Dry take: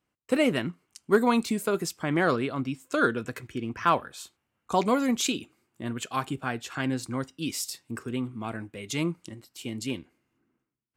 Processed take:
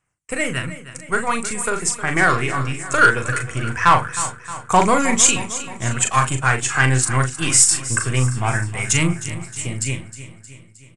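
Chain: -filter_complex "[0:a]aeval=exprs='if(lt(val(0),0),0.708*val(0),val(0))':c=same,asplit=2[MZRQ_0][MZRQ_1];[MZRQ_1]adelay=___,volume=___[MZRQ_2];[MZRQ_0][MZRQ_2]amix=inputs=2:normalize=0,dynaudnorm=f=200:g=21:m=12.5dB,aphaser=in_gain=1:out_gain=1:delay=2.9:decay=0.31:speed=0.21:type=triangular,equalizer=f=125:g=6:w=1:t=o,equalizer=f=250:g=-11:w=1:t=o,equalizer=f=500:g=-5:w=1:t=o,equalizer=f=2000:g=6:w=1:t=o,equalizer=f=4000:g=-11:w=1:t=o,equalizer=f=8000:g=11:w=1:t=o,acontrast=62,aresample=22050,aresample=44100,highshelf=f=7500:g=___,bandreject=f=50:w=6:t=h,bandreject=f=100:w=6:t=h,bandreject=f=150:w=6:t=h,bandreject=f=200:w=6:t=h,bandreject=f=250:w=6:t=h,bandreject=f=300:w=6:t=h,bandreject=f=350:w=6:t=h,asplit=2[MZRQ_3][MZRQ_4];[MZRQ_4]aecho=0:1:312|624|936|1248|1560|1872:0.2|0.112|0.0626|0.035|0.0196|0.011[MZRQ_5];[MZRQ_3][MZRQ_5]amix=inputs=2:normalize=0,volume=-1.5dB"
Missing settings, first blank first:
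39, -7dB, 2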